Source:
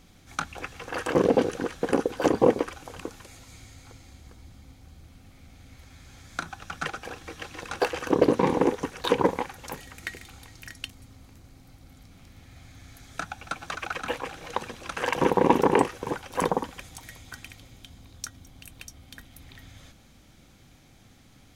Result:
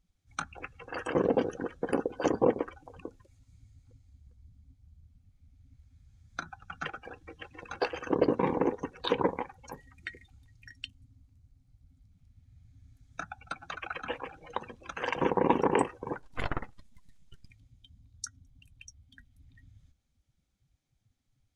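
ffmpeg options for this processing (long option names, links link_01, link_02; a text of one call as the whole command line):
ffmpeg -i in.wav -filter_complex "[0:a]asettb=1/sr,asplit=3[link_01][link_02][link_03];[link_01]atrim=end=16.194[link_04];[link_02]atrim=start=16.19:end=17.5,asetpts=PTS-STARTPTS,afade=type=in:duration=0.004:curve=qsin,afade=type=out:start_time=1.306:duration=0.004:curve=qsin,aeval=exprs='abs(val(0))':channel_layout=same[link_05];[link_03]atrim=start=17.496[link_06];[link_04][link_05]acrossfade=duration=0.004:curve1=hsin:curve2=qsin[link_07];[link_07][link_06]acrossfade=duration=0.004:curve1=qsin:curve2=hsin,afftdn=noise_reduction=24:noise_floor=-38,lowpass=9200,highshelf=frequency=5500:gain=9.5,volume=-5.5dB" out.wav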